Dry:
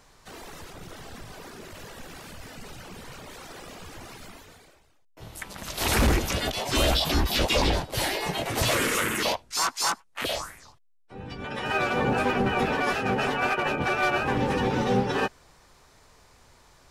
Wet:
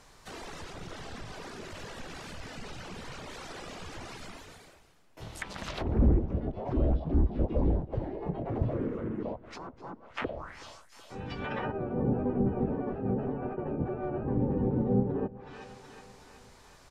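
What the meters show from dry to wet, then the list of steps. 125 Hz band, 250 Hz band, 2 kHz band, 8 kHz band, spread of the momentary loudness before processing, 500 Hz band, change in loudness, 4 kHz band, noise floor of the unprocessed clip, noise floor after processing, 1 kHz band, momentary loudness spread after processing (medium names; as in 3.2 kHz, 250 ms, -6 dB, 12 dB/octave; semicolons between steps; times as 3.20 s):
0.0 dB, -1.0 dB, -16.0 dB, -20.0 dB, 20 LU, -5.5 dB, -7.5 dB, -18.5 dB, -59 dBFS, -56 dBFS, -12.5 dB, 18 LU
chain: feedback delay 373 ms, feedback 59%, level -22.5 dB; low-pass that closes with the level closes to 370 Hz, closed at -25 dBFS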